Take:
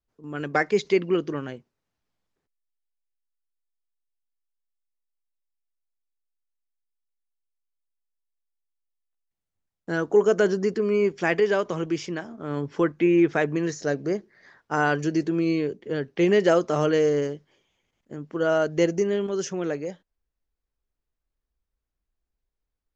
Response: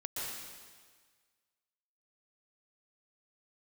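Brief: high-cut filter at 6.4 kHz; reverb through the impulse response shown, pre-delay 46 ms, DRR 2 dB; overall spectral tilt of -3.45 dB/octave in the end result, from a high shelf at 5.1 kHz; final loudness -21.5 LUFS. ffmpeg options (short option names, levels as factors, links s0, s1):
-filter_complex "[0:a]lowpass=6400,highshelf=f=5100:g=-4.5,asplit=2[s0][s1];[1:a]atrim=start_sample=2205,adelay=46[s2];[s1][s2]afir=irnorm=-1:irlink=0,volume=0.596[s3];[s0][s3]amix=inputs=2:normalize=0,volume=1.12"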